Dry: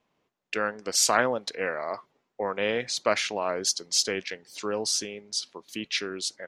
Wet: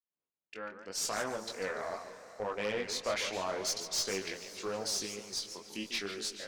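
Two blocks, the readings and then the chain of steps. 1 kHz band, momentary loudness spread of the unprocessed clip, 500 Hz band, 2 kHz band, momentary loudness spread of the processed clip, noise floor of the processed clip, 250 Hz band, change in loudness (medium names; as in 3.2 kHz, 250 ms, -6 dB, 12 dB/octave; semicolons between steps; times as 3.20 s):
-9.5 dB, 12 LU, -8.0 dB, -9.0 dB, 10 LU, under -85 dBFS, -7.5 dB, -8.5 dB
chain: fade-in on the opening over 1.87 s; chorus 0.79 Hz, delay 18.5 ms, depth 4.2 ms; valve stage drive 25 dB, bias 0.3; echo that smears into a reverb 472 ms, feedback 47%, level -16 dB; modulated delay 147 ms, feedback 32%, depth 210 cents, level -10 dB; trim -2 dB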